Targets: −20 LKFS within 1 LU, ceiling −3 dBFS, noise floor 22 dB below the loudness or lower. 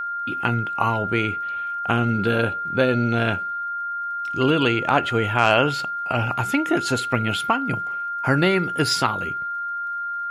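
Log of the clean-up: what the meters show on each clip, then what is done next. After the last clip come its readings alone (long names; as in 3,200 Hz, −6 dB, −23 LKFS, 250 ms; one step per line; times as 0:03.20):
crackle rate 34 per second; interfering tone 1,400 Hz; level of the tone −25 dBFS; integrated loudness −22.0 LKFS; sample peak −3.5 dBFS; target loudness −20.0 LKFS
→ click removal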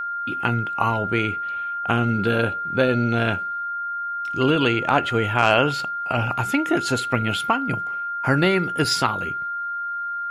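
crackle rate 0.19 per second; interfering tone 1,400 Hz; level of the tone −25 dBFS
→ notch filter 1,400 Hz, Q 30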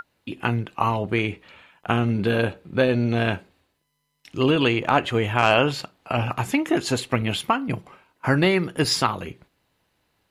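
interfering tone none found; integrated loudness −23.0 LKFS; sample peak −4.5 dBFS; target loudness −20.0 LKFS
→ level +3 dB
brickwall limiter −3 dBFS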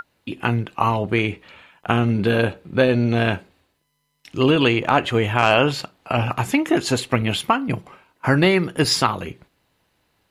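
integrated loudness −20.0 LKFS; sample peak −3.0 dBFS; background noise floor −69 dBFS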